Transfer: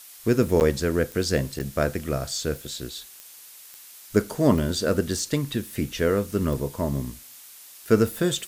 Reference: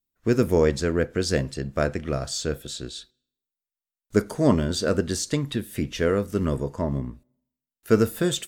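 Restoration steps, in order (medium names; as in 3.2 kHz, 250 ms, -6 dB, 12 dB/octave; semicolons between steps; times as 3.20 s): de-click; interpolate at 0.60/1.59 s, 9.4 ms; noise print and reduce 30 dB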